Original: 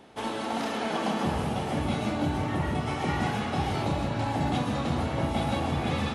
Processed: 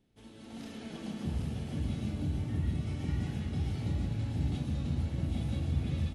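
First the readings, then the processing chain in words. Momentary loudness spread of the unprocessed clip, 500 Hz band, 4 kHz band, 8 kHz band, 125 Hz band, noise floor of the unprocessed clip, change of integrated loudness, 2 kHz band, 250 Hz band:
2 LU, -16.0 dB, -13.0 dB, -11.0 dB, -1.5 dB, -33 dBFS, -6.0 dB, -16.5 dB, -7.5 dB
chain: amplifier tone stack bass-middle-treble 10-0-1; level rider gain up to 9 dB; delay 777 ms -5.5 dB

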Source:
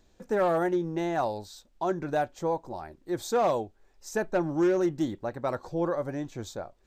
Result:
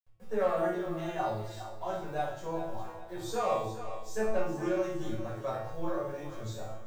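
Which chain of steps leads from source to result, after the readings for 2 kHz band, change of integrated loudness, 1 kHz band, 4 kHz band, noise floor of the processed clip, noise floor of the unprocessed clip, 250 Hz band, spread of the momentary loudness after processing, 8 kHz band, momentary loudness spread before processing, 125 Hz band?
-4.5 dB, -5.5 dB, -4.0 dB, -3.0 dB, -45 dBFS, -64 dBFS, -7.5 dB, 10 LU, -4.5 dB, 14 LU, -3.0 dB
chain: send-on-delta sampling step -52.5 dBFS; peaking EQ 250 Hz -10 dB 0.66 oct; feedback comb 110 Hz, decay 0.57 s, harmonics all, mix 90%; on a send: thinning echo 411 ms, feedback 44%, high-pass 420 Hz, level -10.5 dB; on the sum: simulated room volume 490 m³, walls furnished, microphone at 5.6 m

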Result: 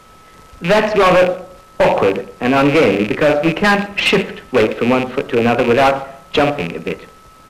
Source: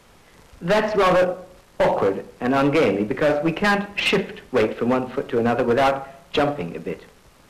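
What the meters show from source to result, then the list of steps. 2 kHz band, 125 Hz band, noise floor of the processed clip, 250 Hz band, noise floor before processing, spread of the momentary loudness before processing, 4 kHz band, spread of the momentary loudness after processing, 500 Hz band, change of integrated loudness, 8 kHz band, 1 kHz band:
+7.0 dB, +6.0 dB, -44 dBFS, +6.0 dB, -53 dBFS, 12 LU, +7.0 dB, 11 LU, +6.0 dB, +6.0 dB, +6.5 dB, +6.0 dB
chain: rattle on loud lows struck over -30 dBFS, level -18 dBFS; whistle 1.3 kHz -51 dBFS; speakerphone echo 120 ms, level -17 dB; trim +6 dB

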